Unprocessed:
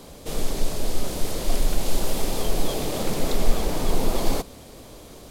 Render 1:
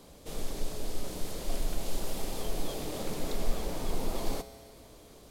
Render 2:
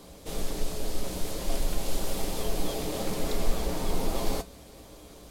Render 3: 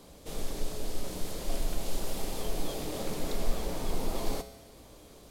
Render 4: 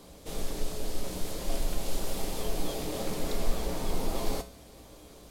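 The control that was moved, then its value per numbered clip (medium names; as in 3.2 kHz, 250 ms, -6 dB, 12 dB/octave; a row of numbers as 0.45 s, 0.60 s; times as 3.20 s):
feedback comb, decay: 2.1 s, 0.15 s, 0.99 s, 0.37 s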